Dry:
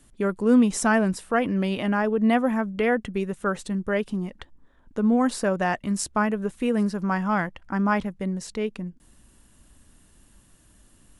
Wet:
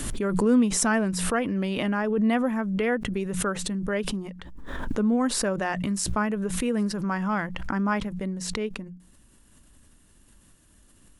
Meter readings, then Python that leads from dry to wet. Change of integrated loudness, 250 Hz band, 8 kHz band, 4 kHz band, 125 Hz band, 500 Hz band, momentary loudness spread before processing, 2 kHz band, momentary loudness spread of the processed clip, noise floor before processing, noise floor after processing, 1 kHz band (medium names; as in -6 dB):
-1.5 dB, -2.0 dB, +5.0 dB, +4.0 dB, -0.5 dB, -2.5 dB, 10 LU, -2.0 dB, 10 LU, -58 dBFS, -58 dBFS, -3.5 dB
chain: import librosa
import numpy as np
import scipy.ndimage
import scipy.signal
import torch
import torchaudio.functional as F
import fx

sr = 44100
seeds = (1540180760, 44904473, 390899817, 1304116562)

y = fx.peak_eq(x, sr, hz=740.0, db=-3.0, octaves=0.53)
y = fx.hum_notches(y, sr, base_hz=60, count=3)
y = fx.pre_swell(y, sr, db_per_s=33.0)
y = y * 10.0 ** (-2.5 / 20.0)